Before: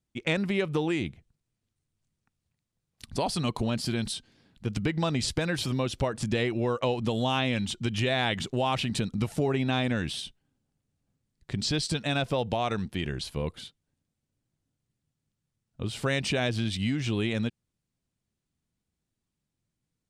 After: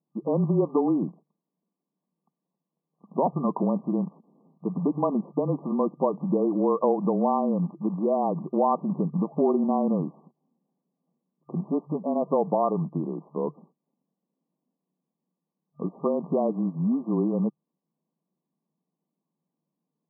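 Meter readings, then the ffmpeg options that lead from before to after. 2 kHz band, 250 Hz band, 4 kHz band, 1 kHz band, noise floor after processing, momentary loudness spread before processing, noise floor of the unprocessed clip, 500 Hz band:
under -40 dB, +5.0 dB, under -40 dB, +5.0 dB, under -85 dBFS, 8 LU, -84 dBFS, +5.0 dB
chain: -af "acrusher=bits=4:mode=log:mix=0:aa=0.000001,afreqshift=-25,afftfilt=real='re*between(b*sr/4096,150,1200)':imag='im*between(b*sr/4096,150,1200)':win_size=4096:overlap=0.75,volume=5.5dB"

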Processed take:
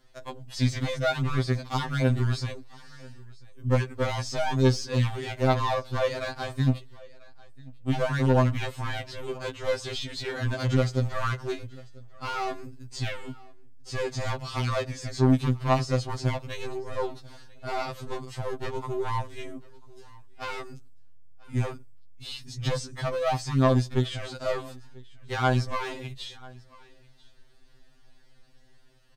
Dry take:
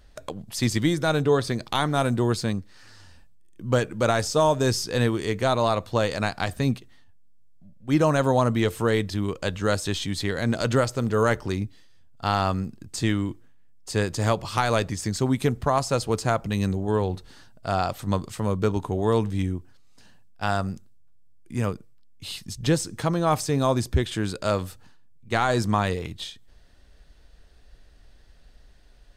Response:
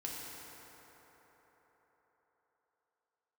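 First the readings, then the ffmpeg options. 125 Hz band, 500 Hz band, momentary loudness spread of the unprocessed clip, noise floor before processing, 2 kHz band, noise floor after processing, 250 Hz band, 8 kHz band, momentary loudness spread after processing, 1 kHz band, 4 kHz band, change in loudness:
-1.0 dB, -5.0 dB, 11 LU, -52 dBFS, -4.0 dB, -53 dBFS, -5.0 dB, -8.5 dB, 17 LU, -5.0 dB, -4.0 dB, -3.5 dB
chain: -filter_complex "[0:a]volume=19.5dB,asoftclip=hard,volume=-19.5dB,acrossover=split=6300[a][b];[b]acompressor=threshold=-55dB:ratio=4:attack=1:release=60[c];[a][c]amix=inputs=2:normalize=0,asplit=2[d][e];[e]aecho=0:1:991:0.0708[f];[d][f]amix=inputs=2:normalize=0,aeval=exprs='0.133*(cos(1*acos(clip(val(0)/0.133,-1,1)))-cos(1*PI/2))+0.0266*(cos(2*acos(clip(val(0)/0.133,-1,1)))-cos(2*PI/2))+0.00266*(cos(8*acos(clip(val(0)/0.133,-1,1)))-cos(8*PI/2))':c=same,afftfilt=real='re*2.45*eq(mod(b,6),0)':imag='im*2.45*eq(mod(b,6),0)':win_size=2048:overlap=0.75"

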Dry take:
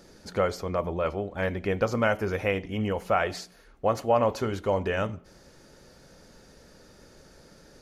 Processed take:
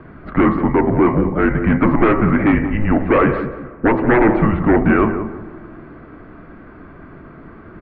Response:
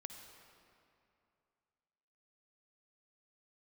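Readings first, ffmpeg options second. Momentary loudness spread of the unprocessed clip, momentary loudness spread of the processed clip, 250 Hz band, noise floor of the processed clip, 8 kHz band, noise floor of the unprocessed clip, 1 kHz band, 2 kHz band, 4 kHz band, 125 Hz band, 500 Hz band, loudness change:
8 LU, 10 LU, +19.0 dB, -40 dBFS, under -35 dB, -55 dBFS, +10.0 dB, +11.0 dB, n/a, +13.5 dB, +8.5 dB, +12.0 dB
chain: -filter_complex "[0:a]bandreject=f=68.42:t=h:w=4,bandreject=f=136.84:t=h:w=4,bandreject=f=205.26:t=h:w=4,bandreject=f=273.68:t=h:w=4,bandreject=f=342.1:t=h:w=4,bandreject=f=410.52:t=h:w=4,bandreject=f=478.94:t=h:w=4,bandreject=f=547.36:t=h:w=4,bandreject=f=615.78:t=h:w=4,bandreject=f=684.2:t=h:w=4,bandreject=f=752.62:t=h:w=4,bandreject=f=821.04:t=h:w=4,bandreject=f=889.46:t=h:w=4,bandreject=f=957.88:t=h:w=4,bandreject=f=1.0263k:t=h:w=4,bandreject=f=1.09472k:t=h:w=4,bandreject=f=1.16314k:t=h:w=4,bandreject=f=1.23156k:t=h:w=4,bandreject=f=1.29998k:t=h:w=4,bandreject=f=1.3684k:t=h:w=4,bandreject=f=1.43682k:t=h:w=4,bandreject=f=1.50524k:t=h:w=4,bandreject=f=1.57366k:t=h:w=4,bandreject=f=1.64208k:t=h:w=4,bandreject=f=1.7105k:t=h:w=4,bandreject=f=1.77892k:t=h:w=4,bandreject=f=1.84734k:t=h:w=4,bandreject=f=1.91576k:t=h:w=4,bandreject=f=1.98418k:t=h:w=4,bandreject=f=2.0526k:t=h:w=4,bandreject=f=2.12102k:t=h:w=4,bandreject=f=2.18944k:t=h:w=4,bandreject=f=2.25786k:t=h:w=4,bandreject=f=2.32628k:t=h:w=4,bandreject=f=2.3947k:t=h:w=4,bandreject=f=2.46312k:t=h:w=4,bandreject=f=2.53154k:t=h:w=4,bandreject=f=2.59996k:t=h:w=4,bandreject=f=2.66838k:t=h:w=4,bandreject=f=2.7368k:t=h:w=4,aeval=exprs='0.316*sin(PI/2*3.55*val(0)/0.316)':c=same,asplit=2[a][b];[b]adelay=179,lowpass=f=1k:p=1,volume=-7.5dB,asplit=2[c][d];[d]adelay=179,lowpass=f=1k:p=1,volume=0.4,asplit=2[e][f];[f]adelay=179,lowpass=f=1k:p=1,volume=0.4,asplit=2[g][h];[h]adelay=179,lowpass=f=1k:p=1,volume=0.4,asplit=2[i][j];[j]adelay=179,lowpass=f=1k:p=1,volume=0.4[k];[a][c][e][g][i][k]amix=inputs=6:normalize=0,asplit=2[l][m];[1:a]atrim=start_sample=2205,asetrate=30429,aresample=44100,lowpass=2.1k[n];[m][n]afir=irnorm=-1:irlink=0,volume=-13dB[o];[l][o]amix=inputs=2:normalize=0,highpass=f=230:t=q:w=0.5412,highpass=f=230:t=q:w=1.307,lowpass=f=2.4k:t=q:w=0.5176,lowpass=f=2.4k:t=q:w=0.7071,lowpass=f=2.4k:t=q:w=1.932,afreqshift=-220,volume=1.5dB"

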